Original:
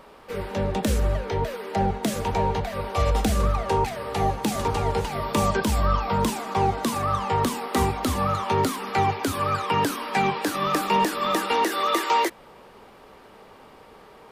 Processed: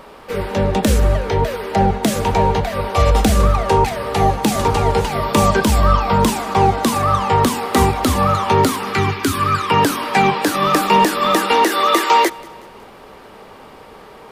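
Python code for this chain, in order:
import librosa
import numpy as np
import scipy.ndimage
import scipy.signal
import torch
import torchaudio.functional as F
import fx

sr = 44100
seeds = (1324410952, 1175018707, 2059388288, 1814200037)

y = fx.band_shelf(x, sr, hz=650.0, db=-11.0, octaves=1.1, at=(8.93, 9.71))
y = fx.echo_feedback(y, sr, ms=185, feedback_pct=49, wet_db=-23.0)
y = y * librosa.db_to_amplitude(8.5)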